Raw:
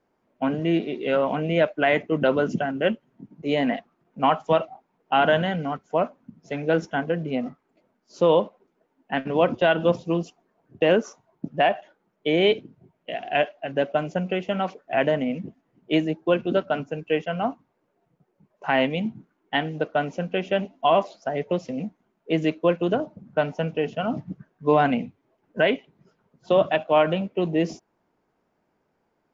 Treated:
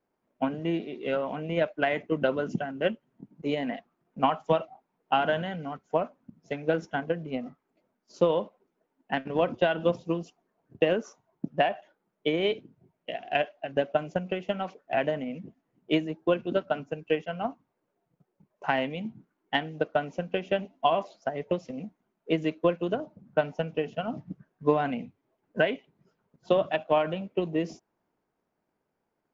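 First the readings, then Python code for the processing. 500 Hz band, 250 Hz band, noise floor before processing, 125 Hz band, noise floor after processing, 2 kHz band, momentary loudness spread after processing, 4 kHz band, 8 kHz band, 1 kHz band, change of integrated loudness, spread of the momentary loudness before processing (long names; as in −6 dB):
−5.0 dB, −6.0 dB, −73 dBFS, −6.0 dB, −80 dBFS, −5.5 dB, 12 LU, −5.5 dB, can't be measured, −5.0 dB, −5.0 dB, 12 LU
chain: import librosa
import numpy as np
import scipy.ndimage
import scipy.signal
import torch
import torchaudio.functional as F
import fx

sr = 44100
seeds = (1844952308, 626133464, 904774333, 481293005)

y = fx.transient(x, sr, attack_db=8, sustain_db=2)
y = y * librosa.db_to_amplitude(-9.0)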